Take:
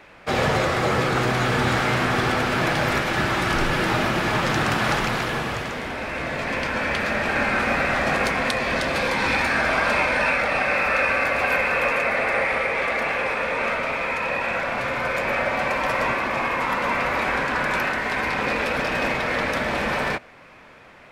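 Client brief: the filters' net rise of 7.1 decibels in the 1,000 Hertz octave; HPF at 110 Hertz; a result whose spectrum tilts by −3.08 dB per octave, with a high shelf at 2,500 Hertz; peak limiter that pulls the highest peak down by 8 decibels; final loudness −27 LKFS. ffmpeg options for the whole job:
ffmpeg -i in.wav -af "highpass=110,equalizer=frequency=1000:width_type=o:gain=7.5,highshelf=frequency=2500:gain=8,volume=-8.5dB,alimiter=limit=-18.5dB:level=0:latency=1" out.wav

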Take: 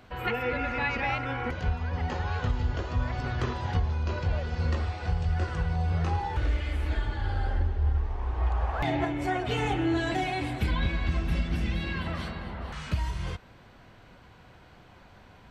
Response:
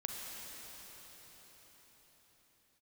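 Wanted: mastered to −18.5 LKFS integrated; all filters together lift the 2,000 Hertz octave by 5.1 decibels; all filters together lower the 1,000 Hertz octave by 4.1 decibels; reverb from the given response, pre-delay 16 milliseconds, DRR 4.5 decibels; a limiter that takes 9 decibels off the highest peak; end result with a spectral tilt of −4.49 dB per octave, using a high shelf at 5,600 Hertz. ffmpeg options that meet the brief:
-filter_complex "[0:a]equalizer=frequency=1000:width_type=o:gain=-8.5,equalizer=frequency=2000:width_type=o:gain=8,highshelf=frequency=5600:gain=6.5,alimiter=limit=-21.5dB:level=0:latency=1,asplit=2[link_01][link_02];[1:a]atrim=start_sample=2205,adelay=16[link_03];[link_02][link_03]afir=irnorm=-1:irlink=0,volume=-5.5dB[link_04];[link_01][link_04]amix=inputs=2:normalize=0,volume=11dB"

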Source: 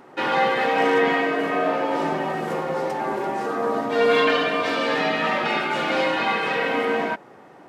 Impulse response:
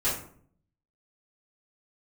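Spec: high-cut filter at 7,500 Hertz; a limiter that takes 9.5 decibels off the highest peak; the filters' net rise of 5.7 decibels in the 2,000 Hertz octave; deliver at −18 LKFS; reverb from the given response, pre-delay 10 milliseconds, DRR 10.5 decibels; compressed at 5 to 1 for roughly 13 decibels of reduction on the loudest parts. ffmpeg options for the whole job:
-filter_complex "[0:a]lowpass=7500,equalizer=frequency=2000:width_type=o:gain=7,acompressor=threshold=-28dB:ratio=5,alimiter=level_in=2dB:limit=-24dB:level=0:latency=1,volume=-2dB,asplit=2[link_01][link_02];[1:a]atrim=start_sample=2205,adelay=10[link_03];[link_02][link_03]afir=irnorm=-1:irlink=0,volume=-20.5dB[link_04];[link_01][link_04]amix=inputs=2:normalize=0,volume=15.5dB"

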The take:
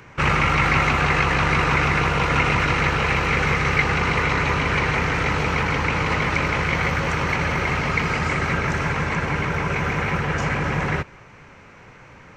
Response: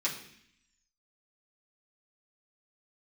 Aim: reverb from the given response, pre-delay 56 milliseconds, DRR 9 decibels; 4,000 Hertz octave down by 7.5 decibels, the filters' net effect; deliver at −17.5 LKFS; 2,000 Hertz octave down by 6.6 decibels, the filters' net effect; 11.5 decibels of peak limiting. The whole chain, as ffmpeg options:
-filter_complex "[0:a]equalizer=frequency=2000:width_type=o:gain=-6,equalizer=frequency=4000:width_type=o:gain=-8,alimiter=limit=-20.5dB:level=0:latency=1,asplit=2[link_01][link_02];[1:a]atrim=start_sample=2205,adelay=56[link_03];[link_02][link_03]afir=irnorm=-1:irlink=0,volume=-15dB[link_04];[link_01][link_04]amix=inputs=2:normalize=0,volume=11dB"

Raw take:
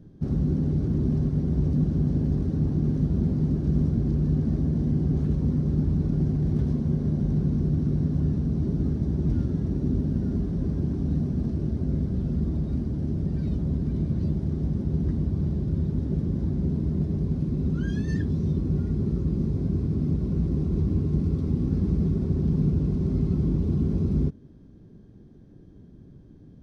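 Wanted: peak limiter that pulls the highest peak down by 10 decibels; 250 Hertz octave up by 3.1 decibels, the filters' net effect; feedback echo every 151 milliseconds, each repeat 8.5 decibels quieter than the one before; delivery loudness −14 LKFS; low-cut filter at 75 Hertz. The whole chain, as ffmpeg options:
ffmpeg -i in.wav -af "highpass=75,equalizer=frequency=250:width_type=o:gain=4.5,alimiter=limit=-20dB:level=0:latency=1,aecho=1:1:151|302|453|604:0.376|0.143|0.0543|0.0206,volume=13.5dB" out.wav

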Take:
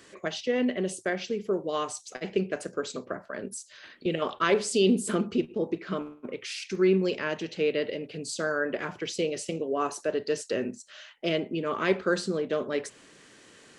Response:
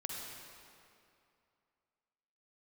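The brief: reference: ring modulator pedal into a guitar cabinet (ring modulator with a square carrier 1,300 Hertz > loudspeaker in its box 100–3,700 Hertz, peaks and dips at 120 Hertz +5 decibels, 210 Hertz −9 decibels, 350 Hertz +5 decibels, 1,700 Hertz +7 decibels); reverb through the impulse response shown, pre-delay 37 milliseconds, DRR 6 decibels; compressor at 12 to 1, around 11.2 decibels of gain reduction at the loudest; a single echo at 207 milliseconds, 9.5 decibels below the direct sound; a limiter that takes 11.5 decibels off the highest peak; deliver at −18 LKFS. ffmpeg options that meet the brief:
-filter_complex "[0:a]acompressor=threshold=-29dB:ratio=12,alimiter=level_in=5.5dB:limit=-24dB:level=0:latency=1,volume=-5.5dB,aecho=1:1:207:0.335,asplit=2[link_01][link_02];[1:a]atrim=start_sample=2205,adelay=37[link_03];[link_02][link_03]afir=irnorm=-1:irlink=0,volume=-6.5dB[link_04];[link_01][link_04]amix=inputs=2:normalize=0,aeval=exprs='val(0)*sgn(sin(2*PI*1300*n/s))':channel_layout=same,highpass=100,equalizer=frequency=120:width_type=q:width=4:gain=5,equalizer=frequency=210:width_type=q:width=4:gain=-9,equalizer=frequency=350:width_type=q:width=4:gain=5,equalizer=frequency=1700:width_type=q:width=4:gain=7,lowpass=frequency=3700:width=0.5412,lowpass=frequency=3700:width=1.3066,volume=16dB"

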